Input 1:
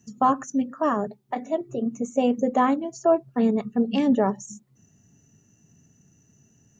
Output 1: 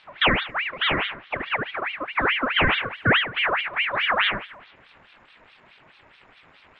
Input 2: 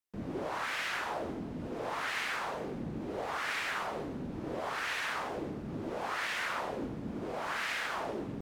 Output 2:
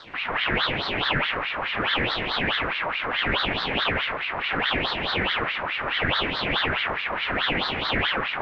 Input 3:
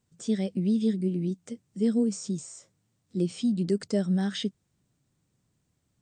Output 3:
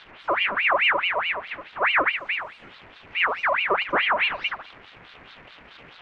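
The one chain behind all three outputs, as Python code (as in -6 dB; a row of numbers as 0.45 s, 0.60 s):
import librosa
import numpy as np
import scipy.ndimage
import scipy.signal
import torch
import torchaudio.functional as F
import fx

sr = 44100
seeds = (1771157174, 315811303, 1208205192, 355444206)

p1 = x + 0.5 * 10.0 ** (-19.0 / 20.0) * np.diff(np.sign(x), prepend=np.sign(x[:1]))
p2 = scipy.signal.sosfilt(scipy.signal.butter(4, 1300.0, 'lowpass', fs=sr, output='sos'), p1)
p3 = fx.peak_eq(p2, sr, hz=260.0, db=-6.0, octaves=2.1)
p4 = p3 + fx.echo_feedback(p3, sr, ms=73, feedback_pct=33, wet_db=-5.0, dry=0)
p5 = fx.ring_lfo(p4, sr, carrier_hz=1700.0, swing_pct=55, hz=4.7)
y = p5 * 10.0 ** (-26 / 20.0) / np.sqrt(np.mean(np.square(p5)))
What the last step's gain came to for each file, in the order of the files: +5.0 dB, +16.5 dB, +10.5 dB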